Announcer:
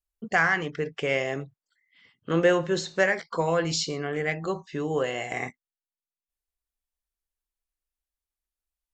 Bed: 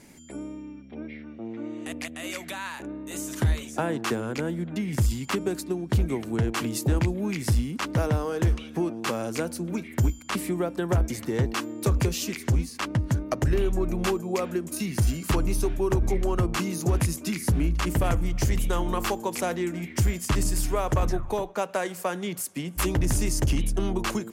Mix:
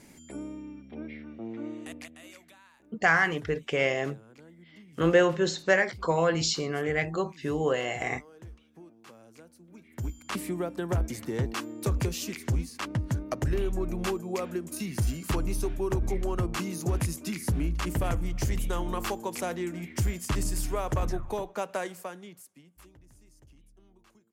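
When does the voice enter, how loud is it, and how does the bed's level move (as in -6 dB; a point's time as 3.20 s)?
2.70 s, 0.0 dB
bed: 1.69 s -2 dB
2.68 s -23.5 dB
9.67 s -23.5 dB
10.24 s -4.5 dB
21.83 s -4.5 dB
23.04 s -34 dB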